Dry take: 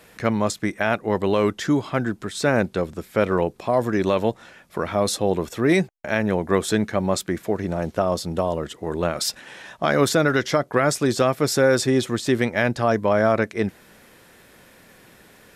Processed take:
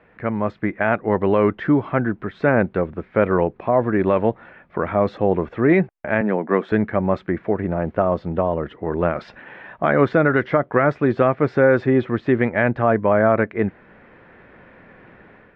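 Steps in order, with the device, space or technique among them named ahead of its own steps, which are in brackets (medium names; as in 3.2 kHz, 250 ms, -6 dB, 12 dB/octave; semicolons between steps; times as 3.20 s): 6.21–6.72 s: Chebyshev high-pass 200 Hz, order 3; action camera in a waterproof case (low-pass 2.2 kHz 24 dB/octave; level rider gain up to 7.5 dB; trim -2.5 dB; AAC 96 kbps 22.05 kHz)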